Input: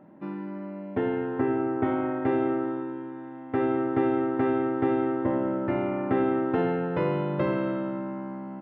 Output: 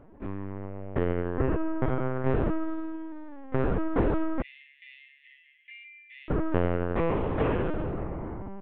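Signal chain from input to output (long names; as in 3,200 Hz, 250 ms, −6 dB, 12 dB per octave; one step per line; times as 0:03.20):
0:04.41–0:06.30: Butterworth high-pass 2,000 Hz 96 dB per octave
linear-prediction vocoder at 8 kHz pitch kept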